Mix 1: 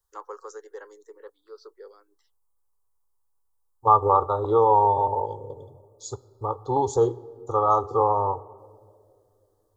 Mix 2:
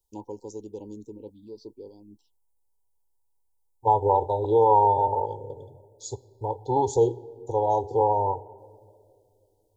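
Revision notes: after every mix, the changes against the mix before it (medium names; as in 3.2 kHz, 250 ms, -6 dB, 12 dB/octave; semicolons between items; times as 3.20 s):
first voice: remove steep high-pass 410 Hz 48 dB/octave; master: add brick-wall FIR band-stop 1–2.3 kHz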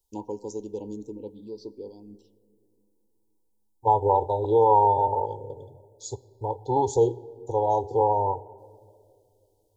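first voice: send on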